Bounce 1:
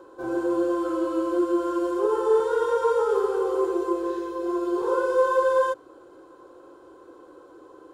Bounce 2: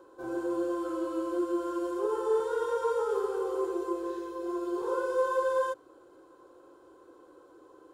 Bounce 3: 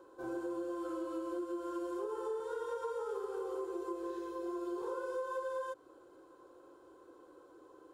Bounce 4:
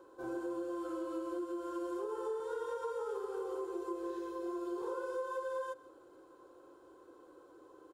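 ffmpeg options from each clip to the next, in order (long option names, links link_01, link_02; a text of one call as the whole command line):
ffmpeg -i in.wav -af "highshelf=frequency=7000:gain=5.5,volume=-7dB" out.wav
ffmpeg -i in.wav -af "acompressor=threshold=-33dB:ratio=6,volume=-3dB" out.wav
ffmpeg -i in.wav -af "aecho=1:1:158:0.119" out.wav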